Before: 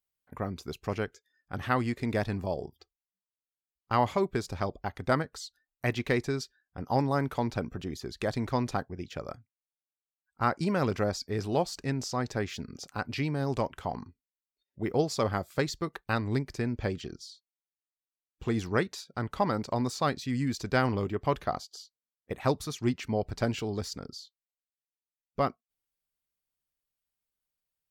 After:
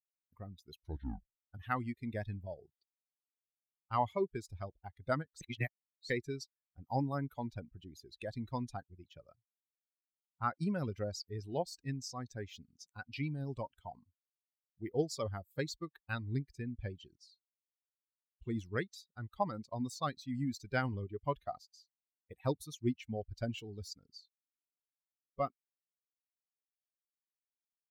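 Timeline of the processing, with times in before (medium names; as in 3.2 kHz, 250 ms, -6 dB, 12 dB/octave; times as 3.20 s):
0.74 s: tape stop 0.80 s
5.41–6.10 s: reverse
whole clip: expander on every frequency bin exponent 2; trim -3 dB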